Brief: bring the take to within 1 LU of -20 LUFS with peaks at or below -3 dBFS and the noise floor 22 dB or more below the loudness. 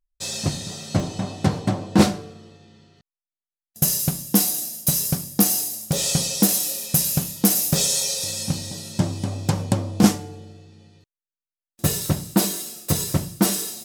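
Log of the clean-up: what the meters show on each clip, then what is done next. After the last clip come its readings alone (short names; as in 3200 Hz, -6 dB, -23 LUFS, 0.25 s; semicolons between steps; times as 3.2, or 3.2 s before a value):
dropouts 3; longest dropout 1.5 ms; loudness -21.5 LUFS; peak -1.5 dBFS; loudness target -20.0 LUFS
-> interpolate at 1/5.42/6.03, 1.5 ms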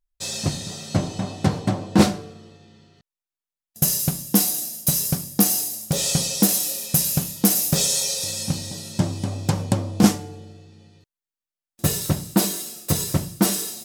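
dropouts 0; loudness -21.5 LUFS; peak -1.5 dBFS; loudness target -20.0 LUFS
-> gain +1.5 dB; limiter -3 dBFS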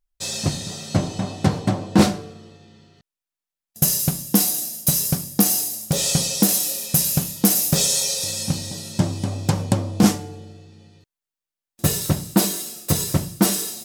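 loudness -20.5 LUFS; peak -3.0 dBFS; noise floor -89 dBFS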